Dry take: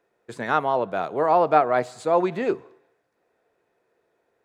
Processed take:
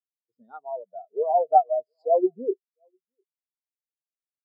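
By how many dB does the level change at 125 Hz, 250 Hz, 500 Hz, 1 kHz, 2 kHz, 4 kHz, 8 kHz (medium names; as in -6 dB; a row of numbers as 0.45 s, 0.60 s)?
under -25 dB, -5.0 dB, -2.5 dB, -2.0 dB, under -30 dB, under -35 dB, no reading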